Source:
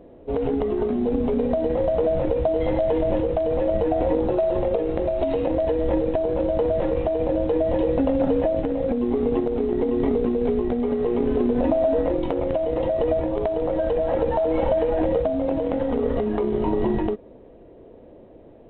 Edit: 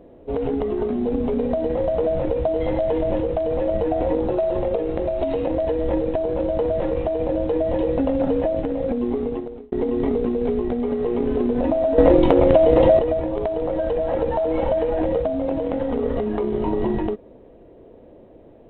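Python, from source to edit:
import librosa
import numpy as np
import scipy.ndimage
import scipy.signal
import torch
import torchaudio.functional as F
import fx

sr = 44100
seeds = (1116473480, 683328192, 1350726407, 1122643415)

y = fx.edit(x, sr, fx.fade_out_span(start_s=9.07, length_s=0.65),
    fx.clip_gain(start_s=11.98, length_s=1.01, db=9.5), tone=tone)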